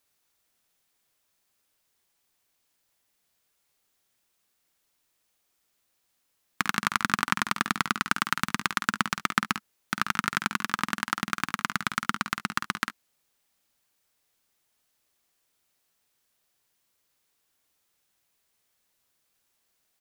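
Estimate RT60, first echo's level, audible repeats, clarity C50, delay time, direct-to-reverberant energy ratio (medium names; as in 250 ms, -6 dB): no reverb, -9.0 dB, 1, no reverb, 50 ms, no reverb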